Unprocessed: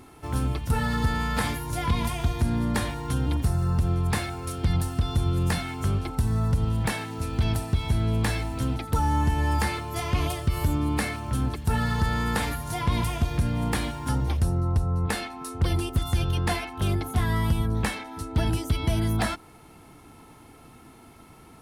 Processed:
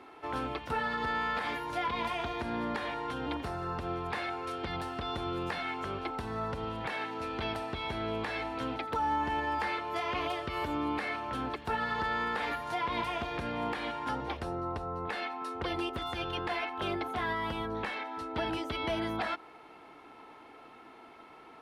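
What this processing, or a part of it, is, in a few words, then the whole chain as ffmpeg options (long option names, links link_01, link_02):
DJ mixer with the lows and highs turned down: -filter_complex "[0:a]acrossover=split=320 3900:gain=0.0794 1 0.0708[link_01][link_02][link_03];[link_01][link_02][link_03]amix=inputs=3:normalize=0,alimiter=level_in=0.5dB:limit=-24dB:level=0:latency=1:release=174,volume=-0.5dB,volume=1.5dB"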